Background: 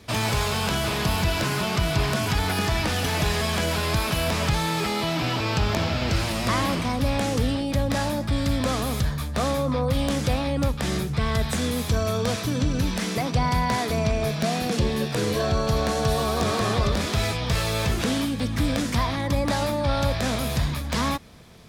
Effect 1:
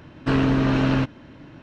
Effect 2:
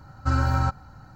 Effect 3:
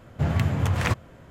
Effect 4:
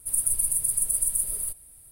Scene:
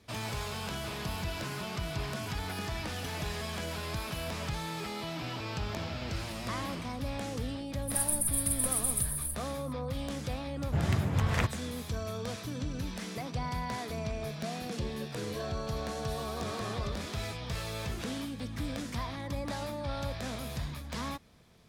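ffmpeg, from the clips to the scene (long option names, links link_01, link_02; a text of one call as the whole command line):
ffmpeg -i bed.wav -i cue0.wav -i cue1.wav -i cue2.wav -i cue3.wav -filter_complex "[0:a]volume=-12.5dB[link_01];[4:a]atrim=end=1.91,asetpts=PTS-STARTPTS,volume=-6dB,afade=type=in:duration=0.004:curve=hsin,afade=type=out:start_time=1.906:duration=0.004:curve=hsin,adelay=7820[link_02];[3:a]atrim=end=1.3,asetpts=PTS-STARTPTS,volume=-5.5dB,afade=type=in:duration=0.004:curve=hsin,afade=type=out:start_time=1.296:duration=0.004:curve=hsin,adelay=10530[link_03];[link_01][link_02][link_03]amix=inputs=3:normalize=0" out.wav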